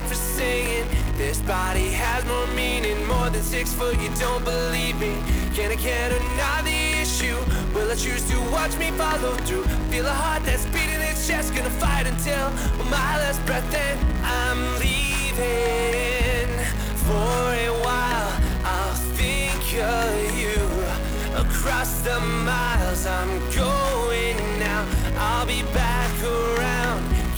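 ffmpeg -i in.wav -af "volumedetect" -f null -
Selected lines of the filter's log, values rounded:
mean_volume: -22.5 dB
max_volume: -12.4 dB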